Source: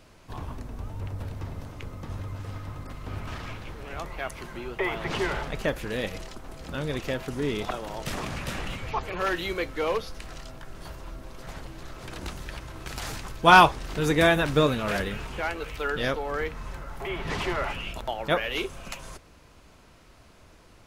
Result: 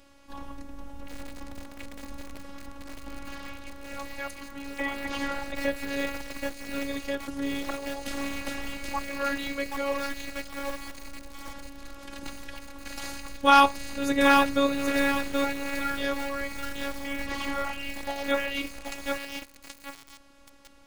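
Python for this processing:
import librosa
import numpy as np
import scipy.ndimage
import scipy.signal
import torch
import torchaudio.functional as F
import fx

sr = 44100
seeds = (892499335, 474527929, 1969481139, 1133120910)

y = fx.robotise(x, sr, hz=279.0)
y = fx.echo_crushed(y, sr, ms=777, feedback_pct=35, bits=6, wet_db=-3.0)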